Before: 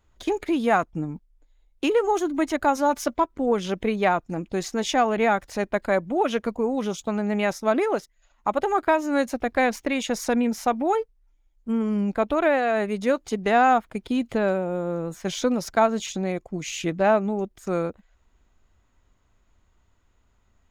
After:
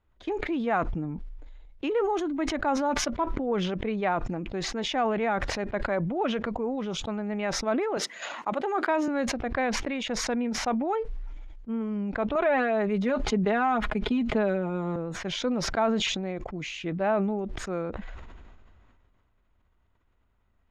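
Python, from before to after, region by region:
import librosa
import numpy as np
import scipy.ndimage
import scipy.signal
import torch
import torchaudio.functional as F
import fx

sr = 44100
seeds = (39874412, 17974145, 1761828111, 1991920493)

y = fx.chain(x, sr, fx.highpass(hz=210.0, slope=24),
    fx.high_shelf(hz=5900.0, db=10.0), at=(7.97, 9.08))
y = fx.chain(y, sr, fx.comb(ms=4.8, depth=0.64),
    fx.band_squash(depth_pct=70), at=(12.35, 14.96))
y = scipy.signal.sosfilt(scipy.signal.butter(2, 3100.0, 'lowpass', fs=sr, output='sos'), y)
y = fx.sustainer(y, sr, db_per_s=26.0)
y = y * librosa.db_to_amplitude(-6.5)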